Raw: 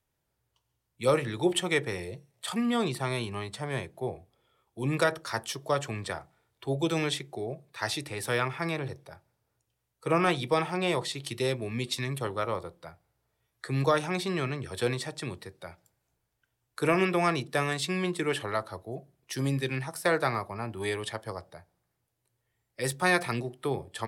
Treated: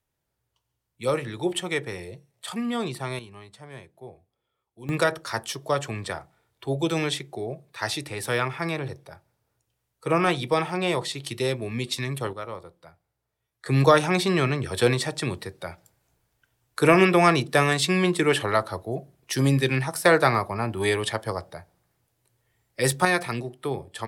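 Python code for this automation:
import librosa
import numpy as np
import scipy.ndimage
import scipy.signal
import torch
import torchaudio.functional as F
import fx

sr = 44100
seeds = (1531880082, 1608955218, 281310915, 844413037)

y = fx.gain(x, sr, db=fx.steps((0.0, -0.5), (3.19, -9.5), (4.89, 3.0), (12.33, -4.5), (13.66, 8.0), (23.05, 1.5)))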